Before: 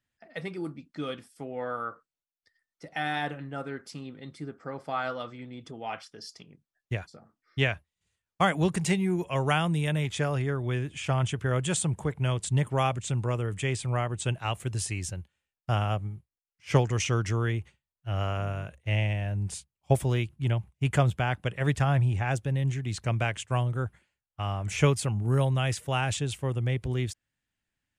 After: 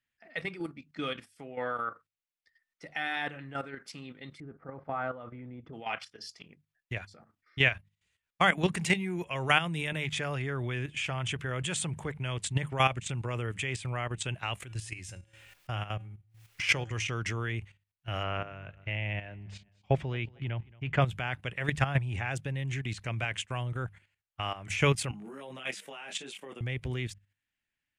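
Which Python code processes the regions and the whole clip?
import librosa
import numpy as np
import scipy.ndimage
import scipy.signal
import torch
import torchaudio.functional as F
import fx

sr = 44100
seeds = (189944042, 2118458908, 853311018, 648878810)

y = fx.chain(x, sr, fx.lowpass(hz=1100.0, slope=12),
    fx.low_shelf(hz=97.0, db=10.5), at=(4.4, 5.73))
y = fx.chain(y, sr, fx.comb_fb(f0_hz=110.0, decay_s=0.38, harmonics='odd', damping=0.0, mix_pct=60),
    fx.pre_swell(db_per_s=72.0), at=(14.62, 17.09))
y = fx.chain(y, sr, fx.air_absorb(metres=190.0),
    fx.echo_feedback(ms=223, feedback_pct=33, wet_db=-24.0), at=(18.23, 21.02))
y = fx.chain(y, sr, fx.ellip_highpass(hz=190.0, order=4, stop_db=60),
    fx.over_compress(threshold_db=-34.0, ratio=-1.0),
    fx.detune_double(cents=13), at=(25.11, 26.61))
y = fx.peak_eq(y, sr, hz=2300.0, db=9.0, octaves=1.5)
y = fx.hum_notches(y, sr, base_hz=50, count=4)
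y = fx.level_steps(y, sr, step_db=11)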